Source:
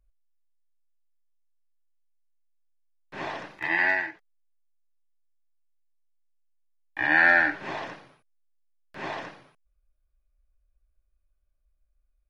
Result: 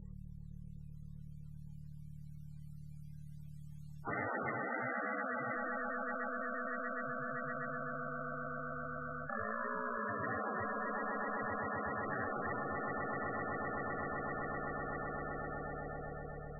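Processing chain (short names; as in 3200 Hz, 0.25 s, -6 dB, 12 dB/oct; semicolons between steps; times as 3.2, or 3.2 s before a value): rattling part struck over -43 dBFS, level -24 dBFS; Doppler pass-by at 4.53, 12 m/s, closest 4.7 m; reverse; compressor 6:1, threshold -47 dBFS, peak gain reduction 18.5 dB; reverse; hum 50 Hz, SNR 27 dB; on a send: swelling echo 95 ms, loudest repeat 5, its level -10 dB; on the sum: loudest bins only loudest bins 32; speed mistake 45 rpm record played at 33 rpm; spectral compressor 10:1; gain +10.5 dB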